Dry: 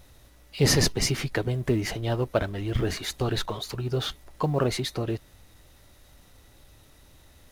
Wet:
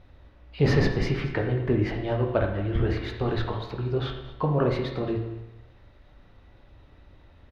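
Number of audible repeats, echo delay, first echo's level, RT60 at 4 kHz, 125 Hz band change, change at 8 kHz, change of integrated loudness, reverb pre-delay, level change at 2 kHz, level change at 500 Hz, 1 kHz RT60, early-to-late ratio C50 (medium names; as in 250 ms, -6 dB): 1, 227 ms, -18.0 dB, 0.85 s, +2.0 dB, under -20 dB, +0.5 dB, 14 ms, -0.5 dB, +1.5 dB, 0.95 s, 6.0 dB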